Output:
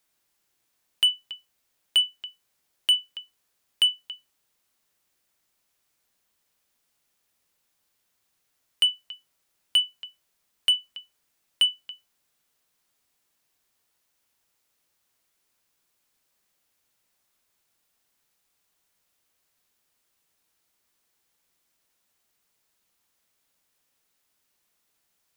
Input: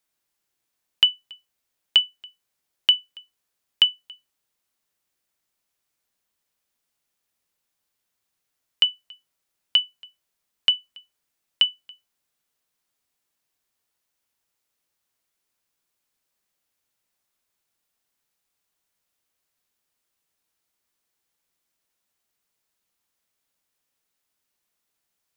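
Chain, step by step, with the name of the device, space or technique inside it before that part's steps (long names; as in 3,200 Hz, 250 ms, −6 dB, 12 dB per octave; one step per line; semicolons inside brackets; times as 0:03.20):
saturation between pre-emphasis and de-emphasis (high-shelf EQ 3,900 Hz +10 dB; soft clipping −16.5 dBFS, distortion −7 dB; high-shelf EQ 3,900 Hz −10 dB)
level +5 dB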